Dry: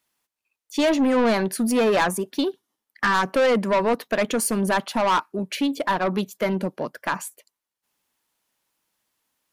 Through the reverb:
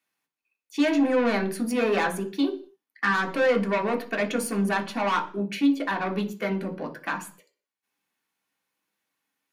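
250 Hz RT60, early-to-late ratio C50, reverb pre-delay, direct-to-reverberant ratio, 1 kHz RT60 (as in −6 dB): can't be measured, 14.0 dB, 3 ms, 1.0 dB, 0.40 s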